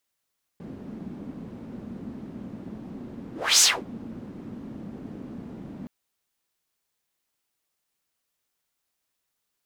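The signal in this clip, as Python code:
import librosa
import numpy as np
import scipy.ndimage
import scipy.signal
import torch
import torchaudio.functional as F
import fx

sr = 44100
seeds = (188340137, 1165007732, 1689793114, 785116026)

y = fx.whoosh(sr, seeds[0], length_s=5.27, peak_s=3.01, rise_s=0.29, fall_s=0.25, ends_hz=230.0, peak_hz=6700.0, q=3.1, swell_db=23.0)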